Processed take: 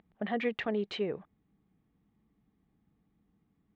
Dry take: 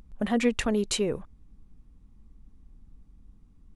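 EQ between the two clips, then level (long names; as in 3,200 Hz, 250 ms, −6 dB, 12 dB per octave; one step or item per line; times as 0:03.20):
loudspeaker in its box 230–3,000 Hz, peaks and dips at 250 Hz −9 dB, 360 Hz −4 dB, 530 Hz −7 dB, 1,000 Hz −8 dB, 1,400 Hz −6 dB, 2,600 Hz −6 dB
0.0 dB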